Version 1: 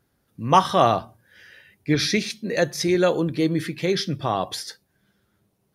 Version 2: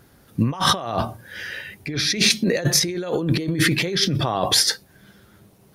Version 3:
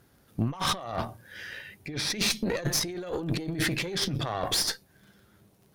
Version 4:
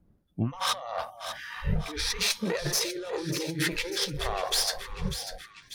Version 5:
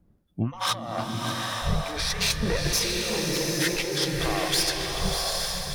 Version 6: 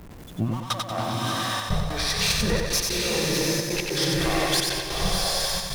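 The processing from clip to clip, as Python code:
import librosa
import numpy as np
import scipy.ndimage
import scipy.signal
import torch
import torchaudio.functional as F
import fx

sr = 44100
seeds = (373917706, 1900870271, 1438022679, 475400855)

y1 = fx.over_compress(x, sr, threshold_db=-31.0, ratio=-1.0)
y1 = y1 * librosa.db_to_amplitude(8.5)
y2 = fx.dmg_crackle(y1, sr, seeds[0], per_s=26.0, level_db=-39.0)
y2 = fx.tube_stage(y2, sr, drive_db=16.0, bias=0.75)
y2 = y2 * librosa.db_to_amplitude(-4.0)
y3 = fx.dmg_wind(y2, sr, seeds[1], corner_hz=170.0, level_db=-36.0)
y3 = fx.echo_alternate(y3, sr, ms=297, hz=980.0, feedback_pct=77, wet_db=-8.0)
y3 = fx.noise_reduce_blind(y3, sr, reduce_db=24)
y4 = fx.rev_bloom(y3, sr, seeds[2], attack_ms=870, drr_db=1.0)
y4 = y4 * librosa.db_to_amplitude(1.5)
y5 = y4 + 0.5 * 10.0 ** (-38.0 / 20.0) * np.sign(y4)
y5 = fx.step_gate(y5, sr, bpm=150, pattern='xxxxxx.x.x', floor_db=-24.0, edge_ms=4.5)
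y5 = fx.echo_feedback(y5, sr, ms=93, feedback_pct=40, wet_db=-3.5)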